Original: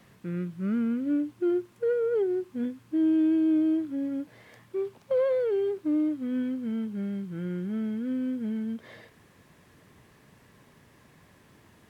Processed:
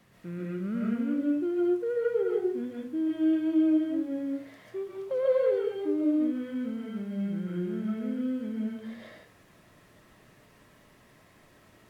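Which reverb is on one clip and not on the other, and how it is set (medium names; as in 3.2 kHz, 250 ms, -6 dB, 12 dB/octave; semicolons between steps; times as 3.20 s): algorithmic reverb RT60 0.42 s, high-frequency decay 0.7×, pre-delay 100 ms, DRR -4.5 dB; trim -5 dB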